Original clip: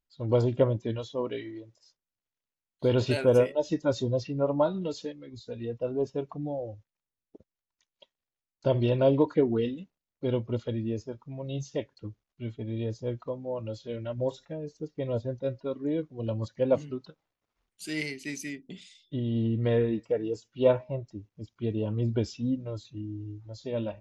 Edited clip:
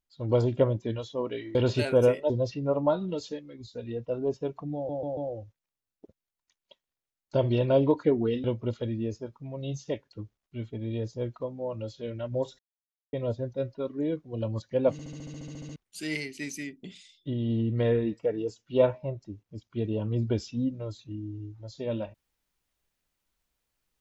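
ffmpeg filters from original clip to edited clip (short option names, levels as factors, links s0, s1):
-filter_complex "[0:a]asplit=21[s0][s1][s2][s3][s4][s5][s6][s7][s8][s9][s10][s11][s12][s13][s14][s15][s16][s17][s18][s19][s20];[s0]atrim=end=1.552[s21];[s1]atrim=start=2.868:end=3.622[s22];[s2]atrim=start=4.028:end=6.622[s23];[s3]atrim=start=6.478:end=6.622[s24];[s4]atrim=start=6.478:end=6.622[s25];[s5]atrim=start=6.478:end=9.752[s26];[s6]atrim=start=10.298:end=14.45,asetpts=PTS-STARTPTS,afade=t=out:st=4.148:d=0.004:c=hsin[s27];[s7]atrim=start=14.45:end=14.99,asetpts=PTS-STARTPTS,volume=0[s28];[s8]atrim=start=14.99:end=16.852,asetpts=PTS-STARTPTS,afade=t=in:d=0.004:c=hsin[s29];[s9]atrim=start=16.778:end=16.852[s30];[s10]atrim=start=16.778:end=16.852[s31];[s11]atrim=start=16.778:end=16.852[s32];[s12]atrim=start=16.778:end=16.852[s33];[s13]atrim=start=16.778:end=16.852[s34];[s14]atrim=start=16.778:end=16.852[s35];[s15]atrim=start=16.778:end=16.852[s36];[s16]atrim=start=16.778:end=16.852[s37];[s17]atrim=start=16.778:end=16.852[s38];[s18]atrim=start=16.778:end=16.852[s39];[s19]atrim=start=16.778:end=16.852[s40];[s20]atrim=start=17.618[s41];[s21][s22]acrossfade=d=0.004:c1=hsin:c2=hsin[s42];[s42][s23]acrossfade=d=0.004:c1=hsin:c2=hsin[s43];[s43][s24]acrossfade=d=0.004:c1=hsin:c2=hsin[s44];[s44][s25]acrossfade=d=0.004:c1=hsin:c2=hsin[s45];[s45][s26]acrossfade=d=0.004:c1=hsin:c2=hsin[s46];[s27][s28][s29]concat=n=3:v=0:a=1[s47];[s46][s47]acrossfade=d=0.004:c1=hsin:c2=hsin[s48];[s48][s30]acrossfade=d=0.004:c1=hsin:c2=hsin[s49];[s49][s31]acrossfade=d=0.004:c1=hsin:c2=hsin[s50];[s50][s32]acrossfade=d=0.004:c1=hsin:c2=hsin[s51];[s51][s33]acrossfade=d=0.004:c1=hsin:c2=hsin[s52];[s52][s34]acrossfade=d=0.004:c1=hsin:c2=hsin[s53];[s53][s35]acrossfade=d=0.004:c1=hsin:c2=hsin[s54];[s54][s36]acrossfade=d=0.004:c1=hsin:c2=hsin[s55];[s55][s37]acrossfade=d=0.004:c1=hsin:c2=hsin[s56];[s56][s38]acrossfade=d=0.004:c1=hsin:c2=hsin[s57];[s57][s39]acrossfade=d=0.004:c1=hsin:c2=hsin[s58];[s58][s40]acrossfade=d=0.004:c1=hsin:c2=hsin[s59];[s59][s41]acrossfade=d=0.004:c1=hsin:c2=hsin"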